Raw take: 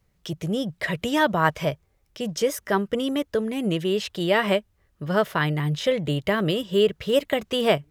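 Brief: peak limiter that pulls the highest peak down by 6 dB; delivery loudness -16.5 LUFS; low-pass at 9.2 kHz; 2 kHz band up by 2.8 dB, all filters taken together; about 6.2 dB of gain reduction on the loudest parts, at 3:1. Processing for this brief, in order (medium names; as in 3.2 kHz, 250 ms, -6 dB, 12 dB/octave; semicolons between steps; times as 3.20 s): low-pass 9.2 kHz; peaking EQ 2 kHz +3.5 dB; compression 3:1, threshold -23 dBFS; trim +12.5 dB; peak limiter -5.5 dBFS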